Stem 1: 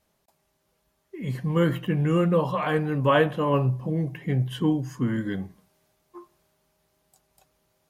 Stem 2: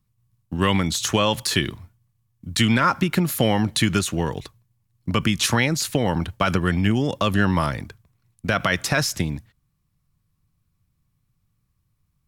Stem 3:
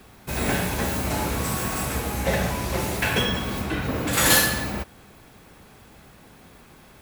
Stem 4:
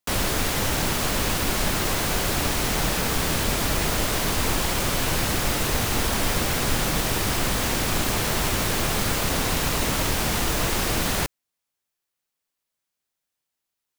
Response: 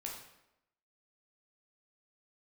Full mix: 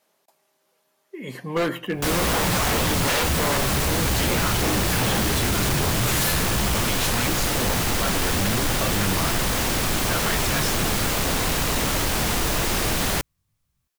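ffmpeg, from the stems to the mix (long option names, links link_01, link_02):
-filter_complex "[0:a]highpass=330,volume=-0.5dB[link_01];[1:a]flanger=delay=16:depth=5:speed=1.4,adelay=1600,volume=-7.5dB[link_02];[2:a]lowshelf=frequency=220:width_type=q:width=1.5:gain=10.5,asplit=2[link_03][link_04];[link_04]adelay=9.1,afreqshift=2[link_05];[link_03][link_05]amix=inputs=2:normalize=1,adelay=1900,volume=-6dB[link_06];[3:a]adelay=1950,volume=-3.5dB[link_07];[link_01][link_02][link_06][link_07]amix=inputs=4:normalize=0,acontrast=36,aeval=exprs='0.15*(abs(mod(val(0)/0.15+3,4)-2)-1)':channel_layout=same"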